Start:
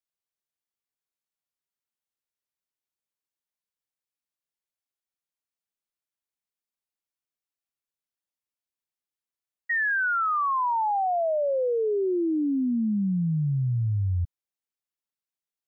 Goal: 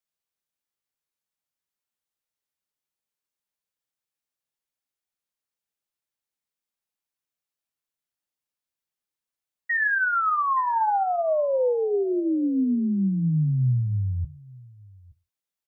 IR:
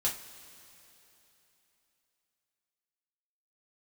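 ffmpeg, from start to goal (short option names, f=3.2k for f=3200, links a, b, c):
-filter_complex "[0:a]aecho=1:1:871:0.0668,asplit=2[a][b];[1:a]atrim=start_sample=2205,afade=t=out:st=0.22:d=0.01,atrim=end_sample=10143[c];[b][c]afir=irnorm=-1:irlink=0,volume=-13.5dB[d];[a][d]amix=inputs=2:normalize=0"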